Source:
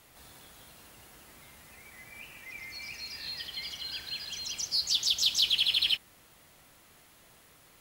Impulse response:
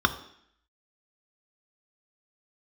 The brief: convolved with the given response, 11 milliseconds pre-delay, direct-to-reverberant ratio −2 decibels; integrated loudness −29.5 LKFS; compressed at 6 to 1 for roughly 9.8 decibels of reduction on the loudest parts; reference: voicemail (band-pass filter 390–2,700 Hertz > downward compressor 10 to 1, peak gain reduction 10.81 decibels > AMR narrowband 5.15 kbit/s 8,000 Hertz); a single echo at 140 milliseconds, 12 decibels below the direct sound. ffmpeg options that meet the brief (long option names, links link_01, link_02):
-filter_complex "[0:a]acompressor=threshold=-33dB:ratio=6,aecho=1:1:140:0.251,asplit=2[link_01][link_02];[1:a]atrim=start_sample=2205,adelay=11[link_03];[link_02][link_03]afir=irnorm=-1:irlink=0,volume=-12.5dB[link_04];[link_01][link_04]amix=inputs=2:normalize=0,highpass=390,lowpass=2700,acompressor=threshold=-42dB:ratio=10,volume=22.5dB" -ar 8000 -c:a libopencore_amrnb -b:a 5150